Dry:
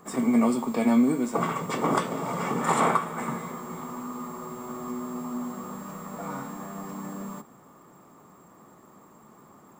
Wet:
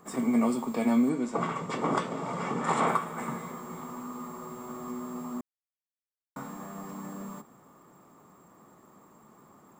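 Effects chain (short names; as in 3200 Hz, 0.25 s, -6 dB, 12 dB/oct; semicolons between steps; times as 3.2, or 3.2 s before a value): 1.09–2.88 LPF 7100 Hz 12 dB/oct; 5.41–6.36 mute; gain -3.5 dB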